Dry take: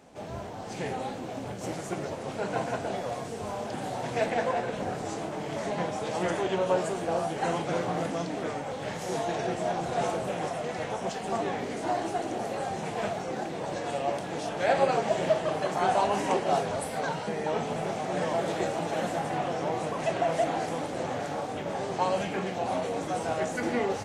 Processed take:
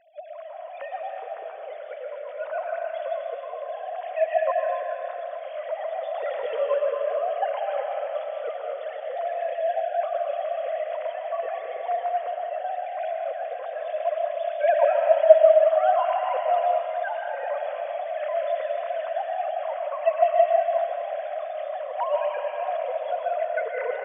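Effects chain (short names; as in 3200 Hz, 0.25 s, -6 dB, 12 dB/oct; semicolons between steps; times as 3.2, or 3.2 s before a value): sine-wave speech; digital reverb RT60 2.7 s, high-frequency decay 0.9×, pre-delay 80 ms, DRR 1 dB; gain +1.5 dB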